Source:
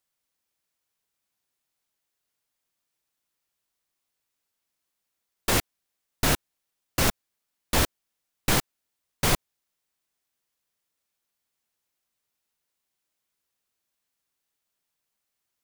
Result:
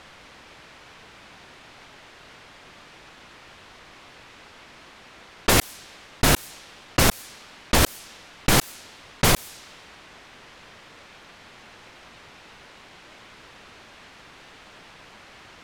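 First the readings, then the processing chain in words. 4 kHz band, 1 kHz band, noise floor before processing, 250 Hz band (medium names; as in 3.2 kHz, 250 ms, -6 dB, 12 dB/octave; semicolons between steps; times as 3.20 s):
+5.5 dB, +5.5 dB, -82 dBFS, +5.5 dB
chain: level-controlled noise filter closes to 2.8 kHz, open at -23.5 dBFS; level flattener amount 100%; trim +2.5 dB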